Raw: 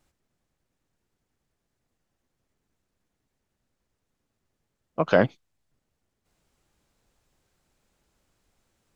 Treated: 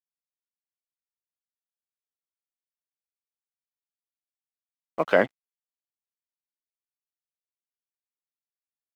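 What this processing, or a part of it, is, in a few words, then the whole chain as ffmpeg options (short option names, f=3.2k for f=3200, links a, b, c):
pocket radio on a weak battery: -af "highpass=270,lowpass=4.3k,aeval=exprs='sgn(val(0))*max(abs(val(0))-0.00422,0)':c=same,equalizer=f=2k:t=o:w=0.32:g=7"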